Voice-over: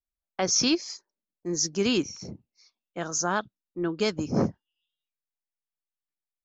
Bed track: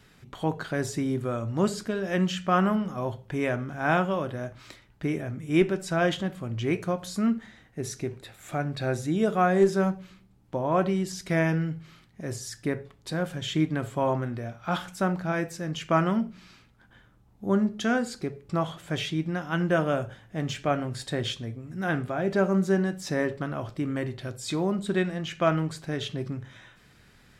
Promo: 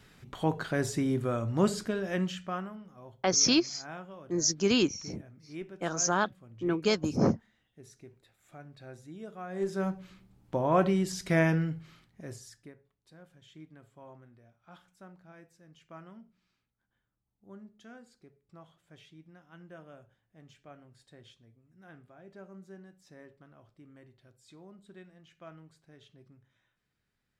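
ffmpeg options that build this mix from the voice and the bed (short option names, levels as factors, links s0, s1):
-filter_complex "[0:a]adelay=2850,volume=0.944[s0];[1:a]volume=7.94,afade=t=out:st=1.77:d=0.93:silence=0.11885,afade=t=in:st=9.47:d=0.86:silence=0.112202,afade=t=out:st=11.42:d=1.31:silence=0.0562341[s1];[s0][s1]amix=inputs=2:normalize=0"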